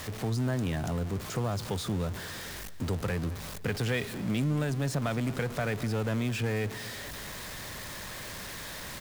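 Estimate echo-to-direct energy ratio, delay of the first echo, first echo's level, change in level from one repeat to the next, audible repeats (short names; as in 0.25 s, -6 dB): -17.0 dB, 0.219 s, -18.5 dB, -5.0 dB, 3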